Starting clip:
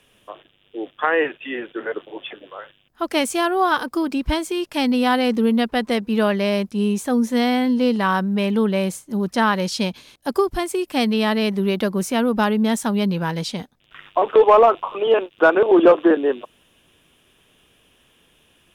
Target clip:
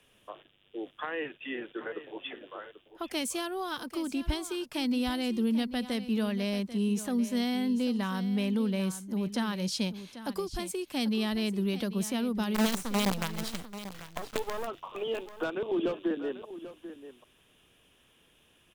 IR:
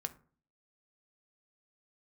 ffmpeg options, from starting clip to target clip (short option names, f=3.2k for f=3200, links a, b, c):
-filter_complex "[0:a]acrossover=split=250|3000[a][b][c];[b]acompressor=threshold=-30dB:ratio=4[d];[a][d][c]amix=inputs=3:normalize=0,asplit=3[e][f][g];[e]afade=t=out:st=12.54:d=0.02[h];[f]acrusher=bits=4:dc=4:mix=0:aa=0.000001,afade=t=in:st=12.54:d=0.02,afade=t=out:st=14.66:d=0.02[i];[g]afade=t=in:st=14.66:d=0.02[j];[h][i][j]amix=inputs=3:normalize=0,aecho=1:1:790:0.211,volume=-6.5dB"